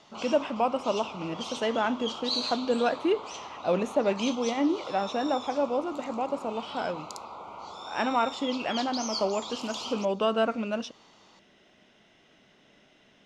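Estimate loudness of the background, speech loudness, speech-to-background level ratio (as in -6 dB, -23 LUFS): -37.5 LUFS, -29.5 LUFS, 8.0 dB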